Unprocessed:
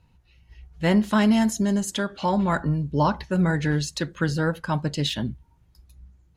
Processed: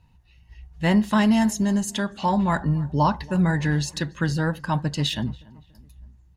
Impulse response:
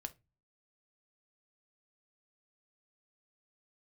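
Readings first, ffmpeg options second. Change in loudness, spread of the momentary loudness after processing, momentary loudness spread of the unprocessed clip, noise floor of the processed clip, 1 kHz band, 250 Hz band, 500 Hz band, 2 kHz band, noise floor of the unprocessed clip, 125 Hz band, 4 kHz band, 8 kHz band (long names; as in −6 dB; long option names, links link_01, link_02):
+0.5 dB, 7 LU, 7 LU, −56 dBFS, +2.0 dB, +0.5 dB, −2.0 dB, +0.5 dB, −60 dBFS, +1.5 dB, +0.5 dB, +0.5 dB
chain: -filter_complex "[0:a]aecho=1:1:1.1:0.33,asplit=2[link_01][link_02];[link_02]adelay=284,lowpass=frequency=2300:poles=1,volume=-22dB,asplit=2[link_03][link_04];[link_04]adelay=284,lowpass=frequency=2300:poles=1,volume=0.5,asplit=2[link_05][link_06];[link_06]adelay=284,lowpass=frequency=2300:poles=1,volume=0.5[link_07];[link_01][link_03][link_05][link_07]amix=inputs=4:normalize=0"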